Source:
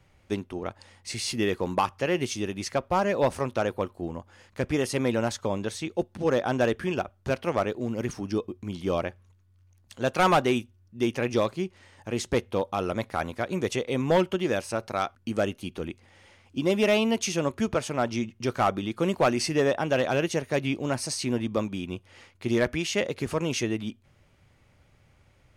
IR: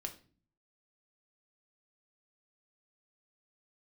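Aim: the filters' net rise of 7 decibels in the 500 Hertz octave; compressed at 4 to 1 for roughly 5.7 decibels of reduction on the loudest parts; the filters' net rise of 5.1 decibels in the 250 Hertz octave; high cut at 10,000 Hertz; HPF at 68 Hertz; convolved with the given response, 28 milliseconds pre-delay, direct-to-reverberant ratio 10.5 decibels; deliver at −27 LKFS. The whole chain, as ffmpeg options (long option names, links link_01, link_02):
-filter_complex "[0:a]highpass=68,lowpass=10000,equalizer=frequency=250:width_type=o:gain=4,equalizer=frequency=500:width_type=o:gain=7.5,acompressor=threshold=-19dB:ratio=4,asplit=2[link_01][link_02];[1:a]atrim=start_sample=2205,adelay=28[link_03];[link_02][link_03]afir=irnorm=-1:irlink=0,volume=-8.5dB[link_04];[link_01][link_04]amix=inputs=2:normalize=0,volume=-1.5dB"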